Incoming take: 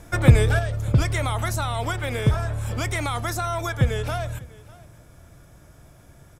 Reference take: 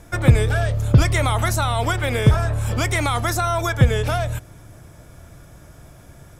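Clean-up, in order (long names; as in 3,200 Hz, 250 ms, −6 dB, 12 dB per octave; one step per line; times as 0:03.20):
echo removal 598 ms −22 dB
level correction +5.5 dB, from 0:00.59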